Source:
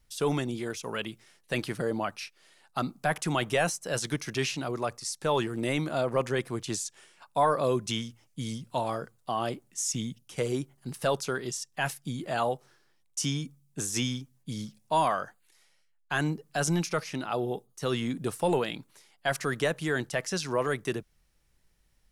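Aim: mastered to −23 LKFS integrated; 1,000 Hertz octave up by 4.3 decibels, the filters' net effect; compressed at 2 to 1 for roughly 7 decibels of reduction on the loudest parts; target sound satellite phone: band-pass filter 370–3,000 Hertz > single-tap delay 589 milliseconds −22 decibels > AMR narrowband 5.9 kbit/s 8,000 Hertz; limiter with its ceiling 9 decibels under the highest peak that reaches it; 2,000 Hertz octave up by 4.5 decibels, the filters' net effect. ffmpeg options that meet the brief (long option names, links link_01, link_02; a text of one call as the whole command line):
ffmpeg -i in.wav -af "equalizer=frequency=1000:width_type=o:gain=4.5,equalizer=frequency=2000:width_type=o:gain=5,acompressor=threshold=-29dB:ratio=2,alimiter=limit=-23dB:level=0:latency=1,highpass=370,lowpass=3000,aecho=1:1:589:0.0794,volume=16dB" -ar 8000 -c:a libopencore_amrnb -b:a 5900 out.amr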